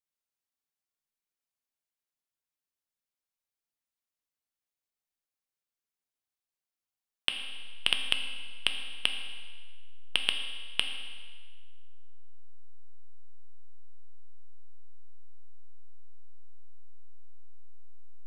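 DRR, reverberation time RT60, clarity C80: 4.5 dB, 1.6 s, 8.0 dB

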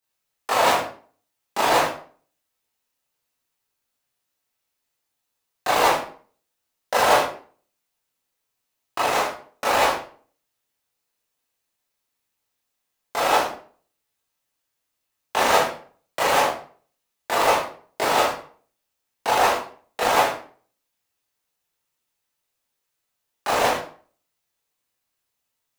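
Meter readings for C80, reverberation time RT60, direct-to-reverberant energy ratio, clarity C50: 9.5 dB, 0.45 s, -8.0 dB, 4.5 dB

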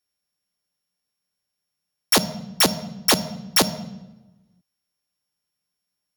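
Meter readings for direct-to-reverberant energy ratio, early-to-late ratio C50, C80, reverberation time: 11.5 dB, 14.5 dB, 16.0 dB, 0.95 s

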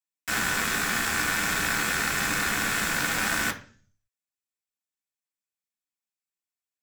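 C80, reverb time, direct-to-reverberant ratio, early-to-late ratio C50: 18.5 dB, 0.45 s, 0.0 dB, 13.5 dB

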